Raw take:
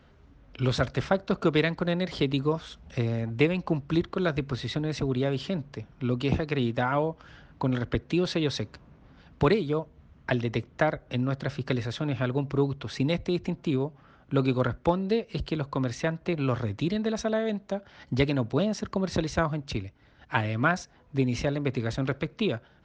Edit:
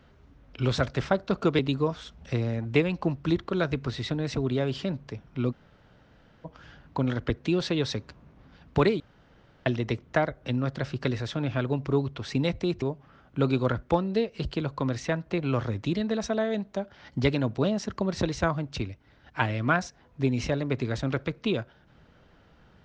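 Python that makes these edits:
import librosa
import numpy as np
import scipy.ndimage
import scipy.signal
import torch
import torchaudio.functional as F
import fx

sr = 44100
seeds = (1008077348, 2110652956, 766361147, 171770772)

y = fx.edit(x, sr, fx.cut(start_s=1.59, length_s=0.65),
    fx.room_tone_fill(start_s=6.17, length_s=0.93, crossfade_s=0.02),
    fx.room_tone_fill(start_s=9.65, length_s=0.66),
    fx.cut(start_s=13.47, length_s=0.3), tone=tone)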